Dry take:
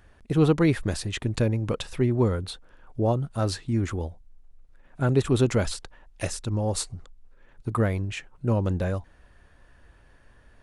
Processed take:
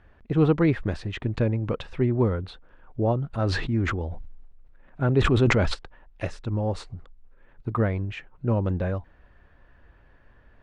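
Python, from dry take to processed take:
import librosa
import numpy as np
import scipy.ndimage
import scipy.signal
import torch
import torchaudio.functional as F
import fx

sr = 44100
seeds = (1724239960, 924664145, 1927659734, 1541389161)

y = scipy.signal.sosfilt(scipy.signal.butter(2, 2700.0, 'lowpass', fs=sr, output='sos'), x)
y = fx.sustainer(y, sr, db_per_s=34.0, at=(3.33, 5.73), fade=0.02)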